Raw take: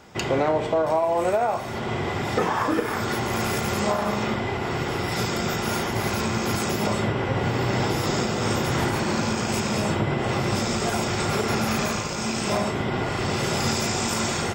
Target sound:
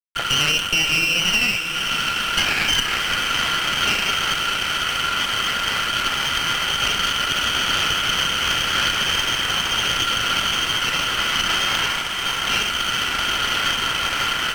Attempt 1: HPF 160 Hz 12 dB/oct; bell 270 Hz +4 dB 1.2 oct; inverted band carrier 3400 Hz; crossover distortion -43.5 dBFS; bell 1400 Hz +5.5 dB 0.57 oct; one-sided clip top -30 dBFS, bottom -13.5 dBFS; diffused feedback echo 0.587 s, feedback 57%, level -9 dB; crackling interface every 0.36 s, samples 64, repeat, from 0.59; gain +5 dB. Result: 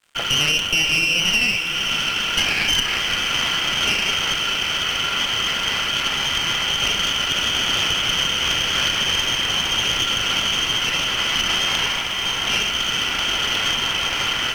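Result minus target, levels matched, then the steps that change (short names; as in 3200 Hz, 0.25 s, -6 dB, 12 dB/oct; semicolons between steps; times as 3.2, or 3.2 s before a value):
crossover distortion: distortion -11 dB; 1000 Hz band -4.0 dB
change: crossover distortion -33 dBFS; change: second bell 1400 Hz +13 dB 0.57 oct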